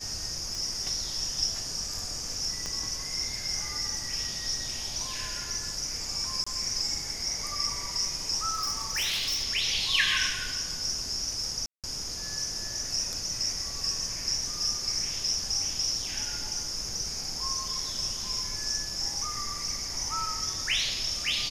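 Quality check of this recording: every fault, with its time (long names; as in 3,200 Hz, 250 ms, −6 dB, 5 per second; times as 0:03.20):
0:00.55: click
0:02.66: click −21 dBFS
0:06.44–0:06.46: drop-out 25 ms
0:08.53–0:09.44: clipping −25.5 dBFS
0:11.66–0:11.84: drop-out 177 ms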